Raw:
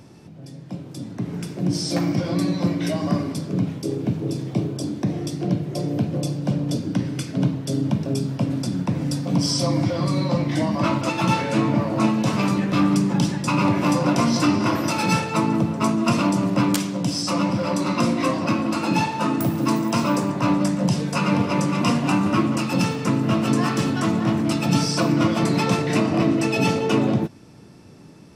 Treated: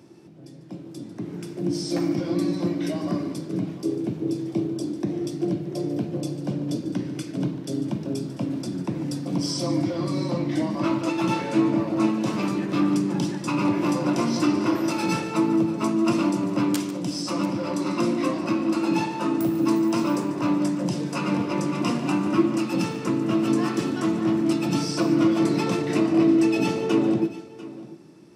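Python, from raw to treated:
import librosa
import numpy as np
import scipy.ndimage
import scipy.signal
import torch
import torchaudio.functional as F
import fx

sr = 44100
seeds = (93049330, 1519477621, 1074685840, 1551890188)

y = scipy.signal.sosfilt(scipy.signal.butter(2, 130.0, 'highpass', fs=sr, output='sos'), x)
y = fx.peak_eq(y, sr, hz=340.0, db=11.5, octaves=0.32)
y = fx.echo_multitap(y, sr, ms=(146, 693), db=(-15.0, -17.5))
y = y * 10.0 ** (-6.0 / 20.0)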